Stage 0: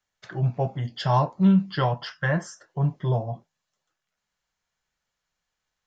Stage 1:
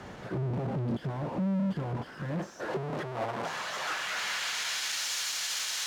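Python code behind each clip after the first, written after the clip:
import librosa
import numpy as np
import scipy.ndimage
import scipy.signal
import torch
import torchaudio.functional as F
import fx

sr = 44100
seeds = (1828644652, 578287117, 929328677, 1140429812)

y = np.sign(x) * np.sqrt(np.mean(np.square(x)))
y = fx.filter_sweep_bandpass(y, sr, from_hz=230.0, to_hz=5000.0, start_s=2.11, end_s=5.09, q=0.71)
y = fx.upward_expand(y, sr, threshold_db=-39.0, expansion=1.5)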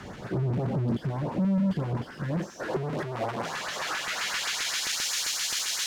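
y = fx.filter_lfo_notch(x, sr, shape='saw_up', hz=7.6, low_hz=430.0, high_hz=3900.0, q=1.0)
y = y * 10.0 ** (4.5 / 20.0)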